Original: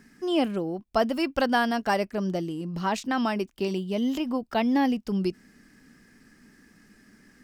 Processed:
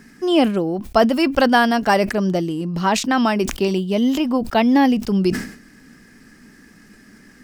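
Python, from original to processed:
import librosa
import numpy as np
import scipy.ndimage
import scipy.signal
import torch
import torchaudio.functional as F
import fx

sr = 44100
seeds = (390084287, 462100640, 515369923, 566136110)

y = fx.sustainer(x, sr, db_per_s=100.0)
y = F.gain(torch.from_numpy(y), 8.5).numpy()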